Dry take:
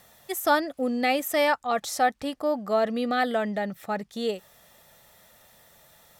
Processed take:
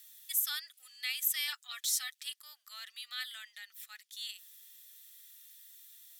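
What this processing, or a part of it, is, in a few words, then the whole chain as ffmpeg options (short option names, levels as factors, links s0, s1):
headphones lying on a table: -filter_complex "[0:a]highpass=f=1500:w=0.5412,highpass=f=1500:w=1.3066,equalizer=f=3400:t=o:w=0.54:g=5.5,asettb=1/sr,asplit=3[s0][s1][s2];[s0]atrim=end=1.474[s3];[s1]atrim=start=1.47:end=2.33,asetpts=PTS-STARTPTS,afade=t=in:d=0.004:c=qsin,afade=t=out:st=0.856:d=0.004:c=qsin,aecho=1:1:7:0.81,atrim=end_sample=37926[s4];[s2]atrim=start=2.326[s5];[s3][s4]acrossfade=d=0.004:c1=hsin:c2=qsin[s6];[s6][s5]acrossfade=d=0.004:c1=qsin:c2=hsin,aderivative"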